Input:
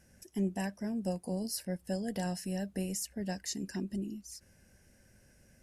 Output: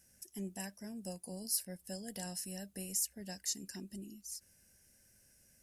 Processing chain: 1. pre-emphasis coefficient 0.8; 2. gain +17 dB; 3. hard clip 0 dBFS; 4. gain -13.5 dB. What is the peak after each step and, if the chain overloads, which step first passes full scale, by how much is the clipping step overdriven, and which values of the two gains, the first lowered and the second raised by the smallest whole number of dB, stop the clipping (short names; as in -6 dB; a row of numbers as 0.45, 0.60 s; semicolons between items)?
-22.5, -5.5, -5.5, -19.0 dBFS; no overload